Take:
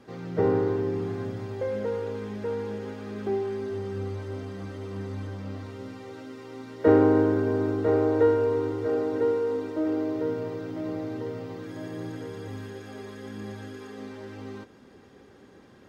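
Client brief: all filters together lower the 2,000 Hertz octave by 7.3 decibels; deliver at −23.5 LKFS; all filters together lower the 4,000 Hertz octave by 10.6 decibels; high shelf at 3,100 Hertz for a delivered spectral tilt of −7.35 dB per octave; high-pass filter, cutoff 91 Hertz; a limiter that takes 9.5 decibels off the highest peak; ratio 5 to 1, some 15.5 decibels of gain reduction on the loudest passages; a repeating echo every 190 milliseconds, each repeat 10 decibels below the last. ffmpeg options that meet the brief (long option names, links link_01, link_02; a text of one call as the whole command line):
ffmpeg -i in.wav -af "highpass=91,equalizer=frequency=2000:width_type=o:gain=-7.5,highshelf=frequency=3100:gain=-5.5,equalizer=frequency=4000:width_type=o:gain=-7,acompressor=threshold=-32dB:ratio=5,alimiter=level_in=6dB:limit=-24dB:level=0:latency=1,volume=-6dB,aecho=1:1:190|380|570|760:0.316|0.101|0.0324|0.0104,volume=15.5dB" out.wav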